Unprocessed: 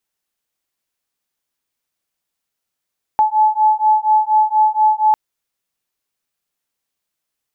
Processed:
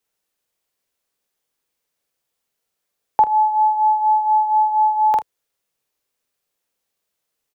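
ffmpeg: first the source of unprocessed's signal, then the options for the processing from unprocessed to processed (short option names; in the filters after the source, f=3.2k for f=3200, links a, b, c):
-f lavfi -i "aevalsrc='0.2*(sin(2*PI*859*t)+sin(2*PI*863.2*t))':d=1.95:s=44100"
-filter_complex "[0:a]acrossover=split=120|330[a][b][c];[c]equalizer=f=470:w=2:g=7.5[d];[a][b][d]amix=inputs=3:normalize=0,aecho=1:1:47|78:0.596|0.133"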